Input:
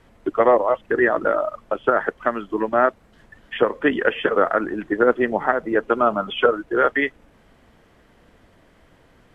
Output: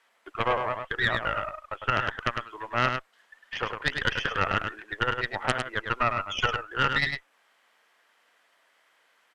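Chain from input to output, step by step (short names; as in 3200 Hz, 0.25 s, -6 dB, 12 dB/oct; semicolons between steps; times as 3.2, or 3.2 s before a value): HPF 1100 Hz 12 dB/oct; added harmonics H 3 -6 dB, 4 -13 dB, 5 -8 dB, 7 -18 dB, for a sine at -5 dBFS; echo 0.103 s -6 dB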